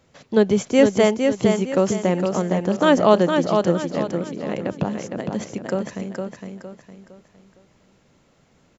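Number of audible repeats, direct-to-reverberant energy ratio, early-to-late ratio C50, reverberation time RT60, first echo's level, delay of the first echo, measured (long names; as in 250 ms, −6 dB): 4, no reverb audible, no reverb audible, no reverb audible, −5.0 dB, 460 ms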